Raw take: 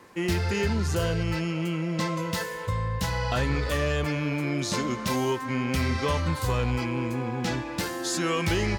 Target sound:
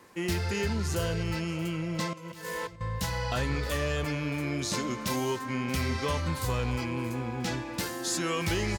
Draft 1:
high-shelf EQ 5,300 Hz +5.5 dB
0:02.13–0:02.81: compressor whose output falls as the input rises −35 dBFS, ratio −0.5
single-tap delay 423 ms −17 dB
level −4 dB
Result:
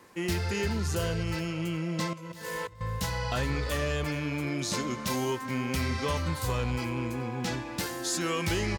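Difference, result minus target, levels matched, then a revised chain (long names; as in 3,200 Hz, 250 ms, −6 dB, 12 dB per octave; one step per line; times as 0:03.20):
echo 204 ms early
high-shelf EQ 5,300 Hz +5.5 dB
0:02.13–0:02.81: compressor whose output falls as the input rises −35 dBFS, ratio −0.5
single-tap delay 627 ms −17 dB
level −4 dB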